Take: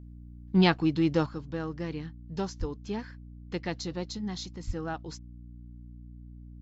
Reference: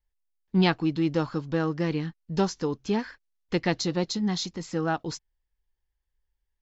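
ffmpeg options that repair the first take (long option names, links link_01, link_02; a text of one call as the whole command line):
ffmpeg -i in.wav -filter_complex "[0:a]bandreject=frequency=59.7:width_type=h:width=4,bandreject=frequency=119.4:width_type=h:width=4,bandreject=frequency=179.1:width_type=h:width=4,bandreject=frequency=238.8:width_type=h:width=4,bandreject=frequency=298.5:width_type=h:width=4,asplit=3[link_01][link_02][link_03];[link_01]afade=type=out:start_time=2.59:duration=0.02[link_04];[link_02]highpass=frequency=140:width=0.5412,highpass=frequency=140:width=1.3066,afade=type=in:start_time=2.59:duration=0.02,afade=type=out:start_time=2.71:duration=0.02[link_05];[link_03]afade=type=in:start_time=2.71:duration=0.02[link_06];[link_04][link_05][link_06]amix=inputs=3:normalize=0,asplit=3[link_07][link_08][link_09];[link_07]afade=type=out:start_time=4.66:duration=0.02[link_10];[link_08]highpass=frequency=140:width=0.5412,highpass=frequency=140:width=1.3066,afade=type=in:start_time=4.66:duration=0.02,afade=type=out:start_time=4.78:duration=0.02[link_11];[link_09]afade=type=in:start_time=4.78:duration=0.02[link_12];[link_10][link_11][link_12]amix=inputs=3:normalize=0,asetnsamples=nb_out_samples=441:pad=0,asendcmd='1.26 volume volume 8dB',volume=0dB" out.wav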